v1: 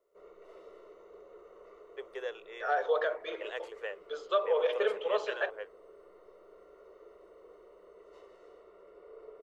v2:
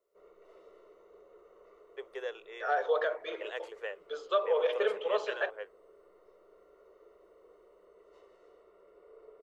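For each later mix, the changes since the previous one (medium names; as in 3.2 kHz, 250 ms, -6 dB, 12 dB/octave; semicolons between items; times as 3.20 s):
background -4.5 dB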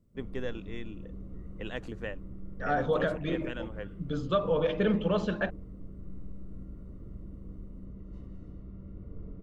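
first voice: entry -1.80 s; background -3.5 dB; master: remove elliptic high-pass 410 Hz, stop band 40 dB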